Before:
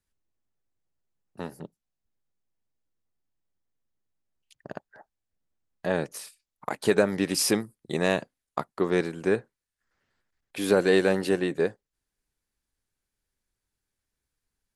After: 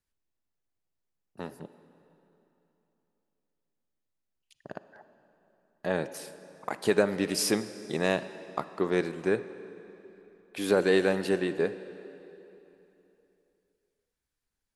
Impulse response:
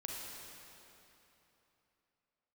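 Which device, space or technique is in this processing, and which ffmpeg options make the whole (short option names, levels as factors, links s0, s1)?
filtered reverb send: -filter_complex "[0:a]asplit=2[s0][s1];[s1]highpass=160,lowpass=8000[s2];[1:a]atrim=start_sample=2205[s3];[s2][s3]afir=irnorm=-1:irlink=0,volume=0.355[s4];[s0][s4]amix=inputs=2:normalize=0,volume=0.631"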